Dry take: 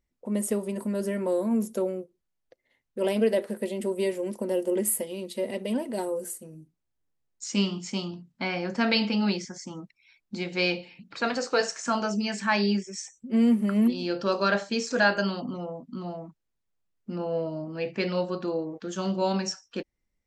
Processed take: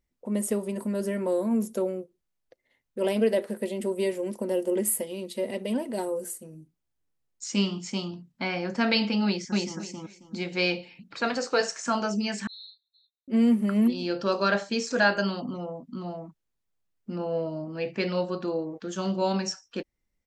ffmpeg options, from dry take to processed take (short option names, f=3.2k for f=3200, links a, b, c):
-filter_complex "[0:a]asplit=2[a][b];[b]afade=t=in:st=9.25:d=0.01,afade=t=out:st=9.79:d=0.01,aecho=0:1:270|540|810:1|0.2|0.04[c];[a][c]amix=inputs=2:normalize=0,asettb=1/sr,asplit=3[d][e][f];[d]atrim=end=12.474[g];[e]atrim=start=12.47:end=13.28,asetpts=PTS-STARTPTS,afade=t=in:d=0.004:c=qsin,afade=t=out:st=0.806:d=0.004:c=qsin,asuperpass=centerf=3900:order=12:qfactor=5.8[h];[f]atrim=start=13.276[i];[g][h]acrossfade=d=0.004:c1=hsin:c2=qsin[j];[j][i]acrossfade=d=0.004:c1=qsin:c2=hsin"